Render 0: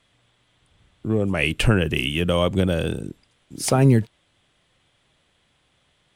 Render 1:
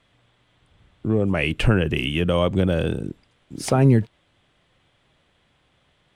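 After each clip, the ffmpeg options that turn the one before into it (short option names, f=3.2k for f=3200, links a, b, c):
-filter_complex "[0:a]highshelf=f=9.7k:g=-3.5,asplit=2[a][b];[b]alimiter=limit=-15.5dB:level=0:latency=1:release=158,volume=-1.5dB[c];[a][c]amix=inputs=2:normalize=0,highshelf=f=4k:g=-8.5,volume=-2.5dB"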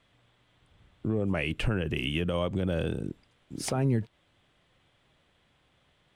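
-filter_complex "[0:a]asplit=2[a][b];[b]acompressor=threshold=-25dB:ratio=6,volume=-3dB[c];[a][c]amix=inputs=2:normalize=0,alimiter=limit=-10dB:level=0:latency=1:release=87,volume=-8.5dB"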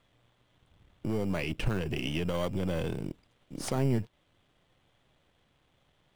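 -filter_complex "[0:a]aeval=exprs='if(lt(val(0),0),0.447*val(0),val(0))':c=same,asplit=2[a][b];[b]acrusher=samples=17:mix=1:aa=0.000001,volume=-8dB[c];[a][c]amix=inputs=2:normalize=0,volume=-1.5dB"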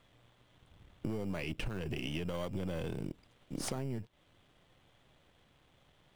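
-af "acompressor=threshold=-36dB:ratio=12,volume=2.5dB"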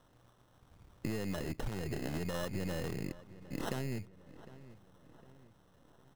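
-filter_complex "[0:a]acrusher=samples=19:mix=1:aa=0.000001,asplit=2[a][b];[b]adelay=757,lowpass=f=2.6k:p=1,volume=-17dB,asplit=2[c][d];[d]adelay=757,lowpass=f=2.6k:p=1,volume=0.5,asplit=2[e][f];[f]adelay=757,lowpass=f=2.6k:p=1,volume=0.5,asplit=2[g][h];[h]adelay=757,lowpass=f=2.6k:p=1,volume=0.5[i];[a][c][e][g][i]amix=inputs=5:normalize=0"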